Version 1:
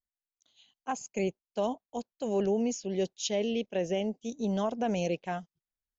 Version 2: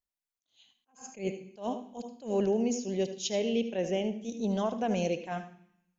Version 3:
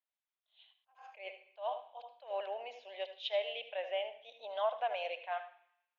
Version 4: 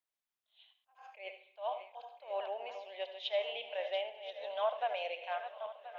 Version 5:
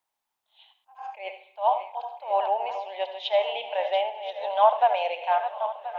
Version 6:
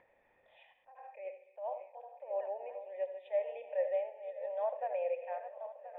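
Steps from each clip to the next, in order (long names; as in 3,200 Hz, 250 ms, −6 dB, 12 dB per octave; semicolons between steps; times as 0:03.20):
on a send at −10 dB: convolution reverb RT60 0.65 s, pre-delay 73 ms; on the sum: level that may rise only so fast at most 200 dB per second
Chebyshev band-pass filter 600–3,700 Hz, order 4
feedback delay that plays each chunk backwards 515 ms, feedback 59%, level −10.5 dB
parametric band 870 Hz +14.5 dB 0.57 octaves; level +7 dB
formant resonators in series e; upward compression, threshold −42 dBFS; low-shelf EQ 300 Hz +11.5 dB; level −3.5 dB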